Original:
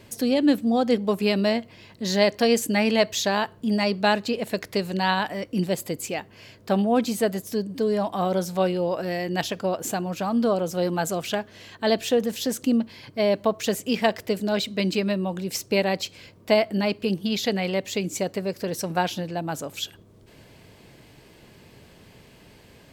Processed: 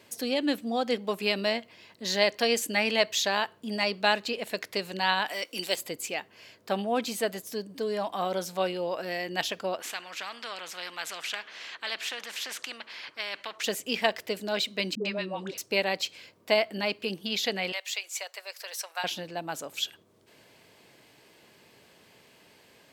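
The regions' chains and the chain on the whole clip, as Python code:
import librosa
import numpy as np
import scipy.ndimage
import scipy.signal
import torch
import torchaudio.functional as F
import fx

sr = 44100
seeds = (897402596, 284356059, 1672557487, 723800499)

y = fx.chain(x, sr, fx.highpass(hz=320.0, slope=12),
    fx.high_shelf(hz=2300.0, db=11.5),
    fx.notch(hz=1800.0, q=17.0), at=(5.28, 5.76))
y = fx.chain(y, sr, fx.bandpass_q(hz=1900.0, q=1.3),
    fx.spectral_comp(ratio=2.0), at=(9.8, 13.64))
y = fx.chain(y, sr, fx.air_absorb(metres=78.0),
    fx.dispersion(late='highs', ms=103.0, hz=520.0),
    fx.band_squash(depth_pct=70), at=(14.95, 15.58))
y = fx.chain(y, sr, fx.bessel_highpass(hz=1000.0, order=6),
    fx.band_squash(depth_pct=40), at=(17.72, 19.04))
y = fx.dynamic_eq(y, sr, hz=2800.0, q=0.89, threshold_db=-41.0, ratio=4.0, max_db=4)
y = fx.highpass(y, sr, hz=520.0, slope=6)
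y = y * 10.0 ** (-3.0 / 20.0)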